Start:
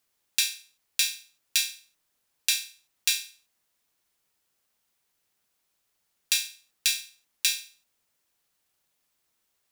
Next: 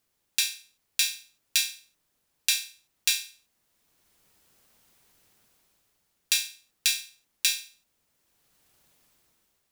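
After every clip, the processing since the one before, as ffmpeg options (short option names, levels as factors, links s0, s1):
-af "lowshelf=f=470:g=7.5,dynaudnorm=f=240:g=7:m=4.22,volume=0.891"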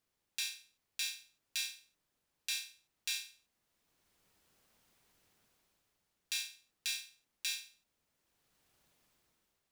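-af "highshelf=f=6600:g=-6,alimiter=limit=0.2:level=0:latency=1:release=91,volume=0.531"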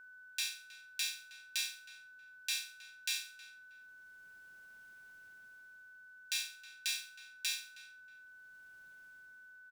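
-filter_complex "[0:a]aeval=exprs='val(0)+0.002*sin(2*PI*1500*n/s)':c=same,asplit=2[s0][s1];[s1]adelay=317,lowpass=f=3300:p=1,volume=0.15,asplit=2[s2][s3];[s3]adelay=317,lowpass=f=3300:p=1,volume=0.25[s4];[s0][s2][s4]amix=inputs=3:normalize=0,volume=1.12"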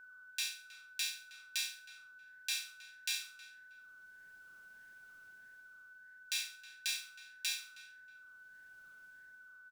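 -af "flanger=delay=1.2:depth=4.2:regen=87:speed=1.6:shape=sinusoidal,volume=1.58"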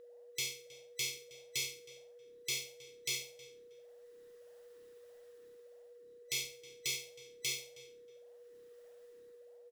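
-af "afftfilt=real='real(if(between(b,1,1012),(2*floor((b-1)/92)+1)*92-b,b),0)':imag='imag(if(between(b,1,1012),(2*floor((b-1)/92)+1)*92-b,b),0)*if(between(b,1,1012),-1,1)':win_size=2048:overlap=0.75"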